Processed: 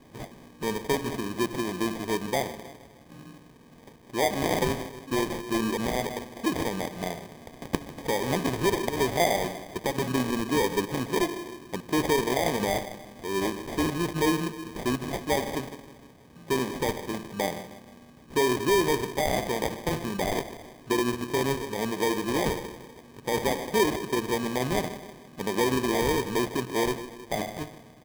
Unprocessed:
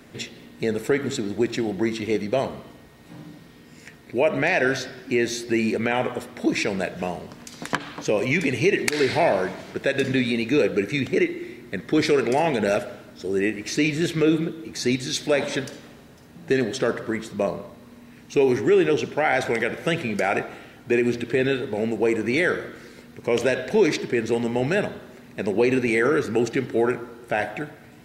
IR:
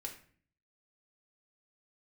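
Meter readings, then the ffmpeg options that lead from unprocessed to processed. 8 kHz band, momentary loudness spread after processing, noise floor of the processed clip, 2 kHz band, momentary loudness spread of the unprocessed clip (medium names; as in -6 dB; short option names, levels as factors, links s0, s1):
+0.5 dB, 14 LU, -52 dBFS, -7.0 dB, 12 LU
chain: -filter_complex "[0:a]asplit=2[s0][s1];[s1]adelay=157,lowpass=f=1900:p=1,volume=0.178,asplit=2[s2][s3];[s3]adelay=157,lowpass=f=1900:p=1,volume=0.52,asplit=2[s4][s5];[s5]adelay=157,lowpass=f=1900:p=1,volume=0.52,asplit=2[s6][s7];[s7]adelay=157,lowpass=f=1900:p=1,volume=0.52,asplit=2[s8][s9];[s9]adelay=157,lowpass=f=1900:p=1,volume=0.52[s10];[s0][s2][s4][s6][s8][s10]amix=inputs=6:normalize=0,acrusher=samples=32:mix=1:aa=0.000001,volume=0.562"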